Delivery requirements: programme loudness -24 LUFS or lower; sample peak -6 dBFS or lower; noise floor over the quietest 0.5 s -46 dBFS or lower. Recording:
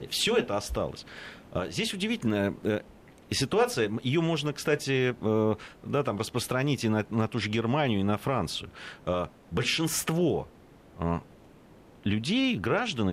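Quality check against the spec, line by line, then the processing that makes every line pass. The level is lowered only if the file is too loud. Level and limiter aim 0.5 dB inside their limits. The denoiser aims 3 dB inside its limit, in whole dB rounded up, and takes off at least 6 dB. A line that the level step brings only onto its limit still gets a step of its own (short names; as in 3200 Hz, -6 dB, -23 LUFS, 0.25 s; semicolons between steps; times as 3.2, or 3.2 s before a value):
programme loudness -29.0 LUFS: OK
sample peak -12.5 dBFS: OK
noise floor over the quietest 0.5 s -54 dBFS: OK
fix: none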